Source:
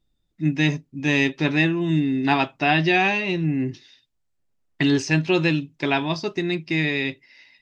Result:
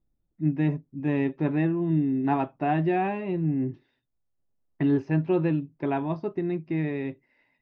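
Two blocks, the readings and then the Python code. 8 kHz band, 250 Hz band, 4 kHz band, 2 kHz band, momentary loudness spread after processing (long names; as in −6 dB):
can't be measured, −3.0 dB, below −20 dB, −16.0 dB, 6 LU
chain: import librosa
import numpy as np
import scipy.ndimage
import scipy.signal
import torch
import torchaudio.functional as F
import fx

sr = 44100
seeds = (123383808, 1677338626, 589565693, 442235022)

y = scipy.signal.sosfilt(scipy.signal.butter(2, 1000.0, 'lowpass', fs=sr, output='sos'), x)
y = F.gain(torch.from_numpy(y), -3.0).numpy()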